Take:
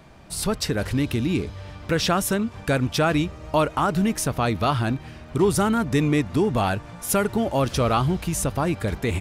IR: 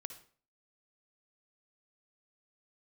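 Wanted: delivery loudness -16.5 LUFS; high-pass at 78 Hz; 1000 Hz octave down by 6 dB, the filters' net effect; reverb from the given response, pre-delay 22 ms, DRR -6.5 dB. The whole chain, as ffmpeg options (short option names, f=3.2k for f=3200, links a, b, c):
-filter_complex "[0:a]highpass=78,equalizer=f=1k:t=o:g=-8.5,asplit=2[a][b];[1:a]atrim=start_sample=2205,adelay=22[c];[b][c]afir=irnorm=-1:irlink=0,volume=10dB[d];[a][d]amix=inputs=2:normalize=0,volume=1dB"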